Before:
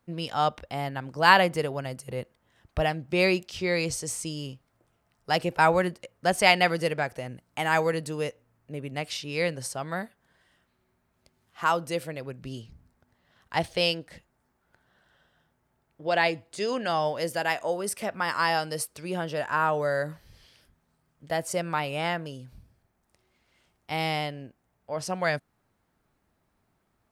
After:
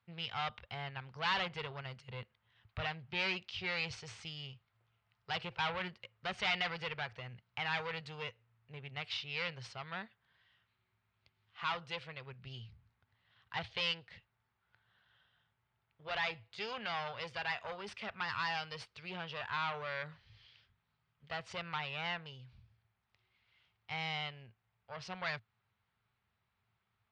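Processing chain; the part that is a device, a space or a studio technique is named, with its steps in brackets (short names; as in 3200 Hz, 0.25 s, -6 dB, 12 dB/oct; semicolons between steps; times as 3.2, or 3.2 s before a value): scooped metal amplifier (tube stage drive 25 dB, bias 0.55; speaker cabinet 81–3700 Hz, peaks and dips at 110 Hz +10 dB, 220 Hz +8 dB, 390 Hz +7 dB, 610 Hz -4 dB, 1700 Hz -3 dB; passive tone stack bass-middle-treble 10-0-10); gain +4 dB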